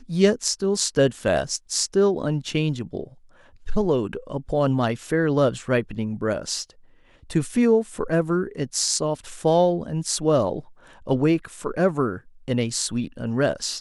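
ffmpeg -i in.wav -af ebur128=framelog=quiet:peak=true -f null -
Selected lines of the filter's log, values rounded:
Integrated loudness:
  I:         -23.2 LUFS
  Threshold: -33.7 LUFS
Loudness range:
  LRA:         2.5 LU
  Threshold: -43.9 LUFS
  LRA low:   -25.0 LUFS
  LRA high:  -22.5 LUFS
True peak:
  Peak:       -4.1 dBFS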